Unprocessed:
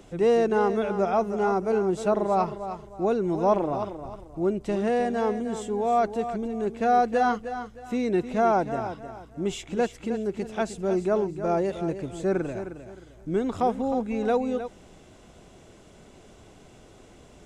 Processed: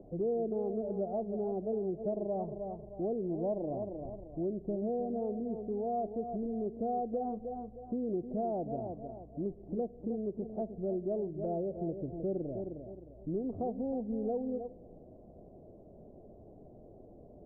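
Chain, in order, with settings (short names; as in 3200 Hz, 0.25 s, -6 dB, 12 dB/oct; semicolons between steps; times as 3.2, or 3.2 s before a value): elliptic low-pass 660 Hz, stop band 80 dB; compressor 2.5:1, threshold -31 dBFS, peak gain reduction 9 dB; on a send at -19 dB: reverb RT60 1.4 s, pre-delay 4 ms; on the sum: mismatched tape noise reduction encoder only; gain -3 dB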